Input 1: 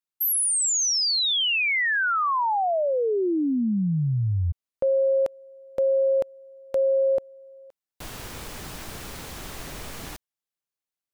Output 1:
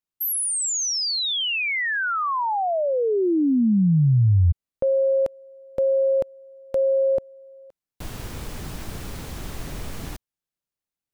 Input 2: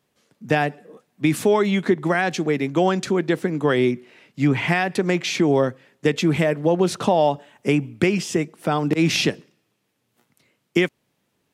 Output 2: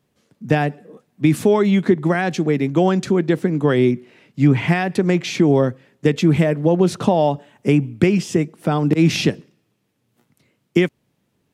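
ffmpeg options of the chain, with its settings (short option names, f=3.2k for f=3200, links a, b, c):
-af "lowshelf=f=340:g=9.5,volume=-1.5dB"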